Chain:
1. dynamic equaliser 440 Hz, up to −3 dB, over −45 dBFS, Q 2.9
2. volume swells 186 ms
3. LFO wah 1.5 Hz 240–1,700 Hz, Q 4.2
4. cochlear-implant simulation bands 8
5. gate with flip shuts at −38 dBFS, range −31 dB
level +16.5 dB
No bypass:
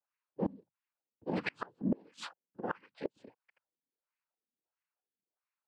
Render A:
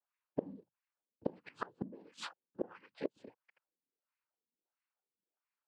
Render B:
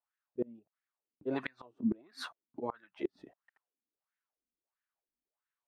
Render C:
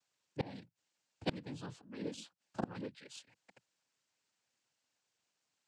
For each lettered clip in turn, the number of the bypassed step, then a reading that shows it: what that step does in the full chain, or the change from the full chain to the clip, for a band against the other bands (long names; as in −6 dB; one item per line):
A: 2, change in crest factor +6.5 dB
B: 4, 125 Hz band −6.0 dB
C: 3, 8 kHz band +8.5 dB